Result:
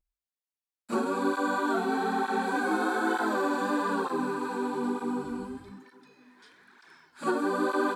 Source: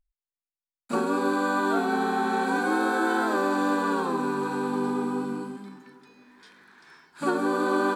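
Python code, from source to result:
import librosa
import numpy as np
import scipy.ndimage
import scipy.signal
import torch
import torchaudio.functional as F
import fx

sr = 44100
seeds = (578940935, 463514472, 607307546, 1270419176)

y = fx.dmg_wind(x, sr, seeds[0], corner_hz=140.0, level_db=-42.0, at=(5.22, 5.72), fade=0.02)
y = fx.hum_notches(y, sr, base_hz=50, count=4)
y = fx.flanger_cancel(y, sr, hz=1.1, depth_ms=7.5)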